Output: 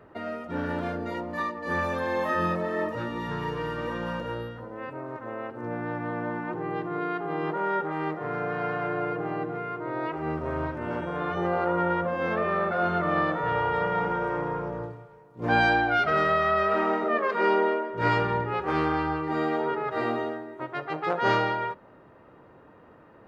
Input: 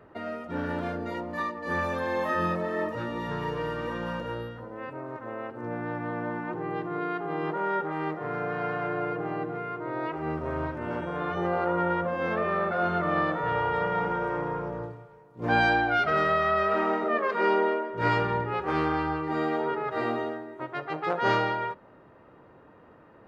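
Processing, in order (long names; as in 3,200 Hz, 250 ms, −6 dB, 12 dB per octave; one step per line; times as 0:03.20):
0:03.08–0:03.78: parametric band 590 Hz −6 dB 0.43 octaves
level +1 dB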